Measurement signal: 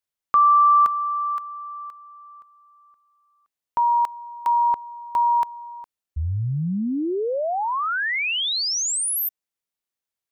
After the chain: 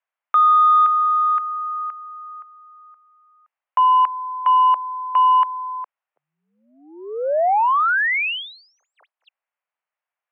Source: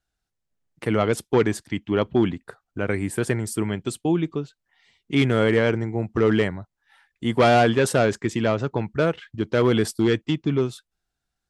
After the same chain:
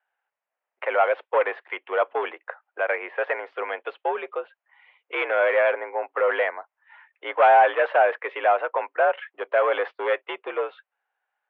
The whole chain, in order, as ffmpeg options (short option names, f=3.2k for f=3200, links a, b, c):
-filter_complex "[0:a]asplit=2[a][b];[b]highpass=f=720:p=1,volume=19dB,asoftclip=type=tanh:threshold=-4.5dB[c];[a][c]amix=inputs=2:normalize=0,lowpass=f=1k:p=1,volume=-6dB,highpass=f=500:t=q:w=0.5412,highpass=f=500:t=q:w=1.307,lowpass=f=2.8k:t=q:w=0.5176,lowpass=f=2.8k:t=q:w=0.7071,lowpass=f=2.8k:t=q:w=1.932,afreqshift=67"